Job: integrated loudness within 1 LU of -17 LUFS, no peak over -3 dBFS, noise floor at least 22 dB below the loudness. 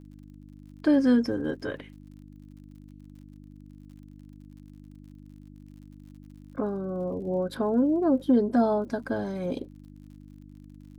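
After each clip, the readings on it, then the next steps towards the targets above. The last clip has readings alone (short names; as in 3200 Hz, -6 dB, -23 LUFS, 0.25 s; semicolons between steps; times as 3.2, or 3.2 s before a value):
ticks 57/s; hum 50 Hz; harmonics up to 300 Hz; hum level -46 dBFS; loudness -26.5 LUFS; peak -12.5 dBFS; loudness target -17.0 LUFS
-> de-click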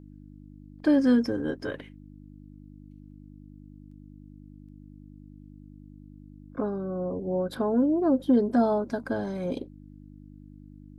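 ticks 0.18/s; hum 50 Hz; harmonics up to 300 Hz; hum level -46 dBFS
-> de-hum 50 Hz, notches 6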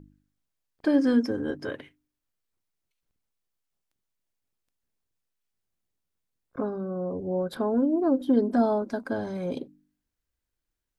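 hum none; loudness -27.0 LUFS; peak -12.0 dBFS; loudness target -17.0 LUFS
-> gain +10 dB; limiter -3 dBFS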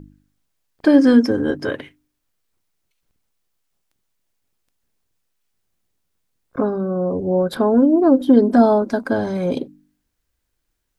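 loudness -17.0 LUFS; peak -3.0 dBFS; noise floor -74 dBFS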